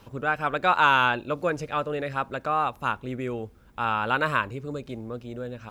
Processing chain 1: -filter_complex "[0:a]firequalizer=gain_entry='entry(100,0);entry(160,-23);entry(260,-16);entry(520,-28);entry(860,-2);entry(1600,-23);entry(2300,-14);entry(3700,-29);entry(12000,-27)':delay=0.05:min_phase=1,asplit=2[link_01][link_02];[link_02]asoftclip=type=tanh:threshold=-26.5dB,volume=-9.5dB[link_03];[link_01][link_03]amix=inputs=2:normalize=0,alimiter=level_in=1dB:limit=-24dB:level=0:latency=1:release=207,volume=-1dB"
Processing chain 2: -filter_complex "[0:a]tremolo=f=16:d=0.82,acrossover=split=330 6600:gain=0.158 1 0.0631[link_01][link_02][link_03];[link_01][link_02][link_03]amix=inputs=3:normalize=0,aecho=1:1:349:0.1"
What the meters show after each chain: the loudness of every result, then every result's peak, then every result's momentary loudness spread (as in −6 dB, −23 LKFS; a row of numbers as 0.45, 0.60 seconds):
−38.0, −29.5 LKFS; −25.0, −8.5 dBFS; 13, 20 LU